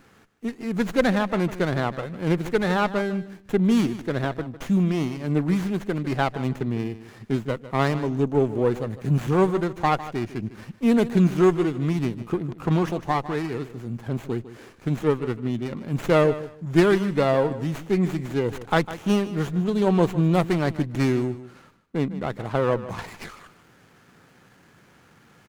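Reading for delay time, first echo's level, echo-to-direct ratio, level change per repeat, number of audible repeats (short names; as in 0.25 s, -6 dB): 0.153 s, -14.5 dB, -14.5 dB, -13.5 dB, 2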